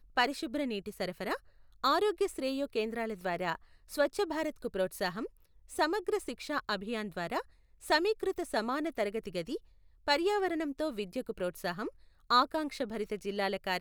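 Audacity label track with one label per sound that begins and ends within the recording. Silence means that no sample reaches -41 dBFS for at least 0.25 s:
1.840000	3.550000	sound
3.910000	5.270000	sound
5.710000	7.420000	sound
7.840000	9.570000	sound
10.080000	11.890000	sound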